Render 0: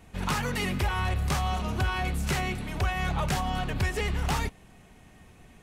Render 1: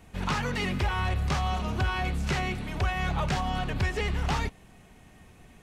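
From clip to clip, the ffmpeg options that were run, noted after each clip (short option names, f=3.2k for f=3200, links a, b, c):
-filter_complex "[0:a]acrossover=split=6800[a][b];[b]acompressor=threshold=-58dB:ratio=4:attack=1:release=60[c];[a][c]amix=inputs=2:normalize=0"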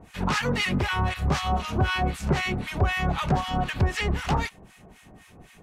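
-filter_complex "[0:a]lowshelf=f=84:g=-6.5,acrossover=split=1100[a][b];[a]aeval=exprs='val(0)*(1-1/2+1/2*cos(2*PI*3.9*n/s))':c=same[c];[b]aeval=exprs='val(0)*(1-1/2-1/2*cos(2*PI*3.9*n/s))':c=same[d];[c][d]amix=inputs=2:normalize=0,volume=9dB"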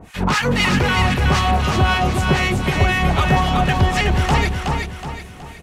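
-filter_complex "[0:a]asplit=2[a][b];[b]asoftclip=type=hard:threshold=-23dB,volume=-5dB[c];[a][c]amix=inputs=2:normalize=0,aecho=1:1:371|742|1113|1484|1855:0.631|0.252|0.101|0.0404|0.0162,volume=4dB"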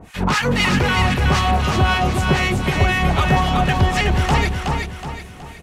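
-ar 44100 -c:a libmp3lame -b:a 192k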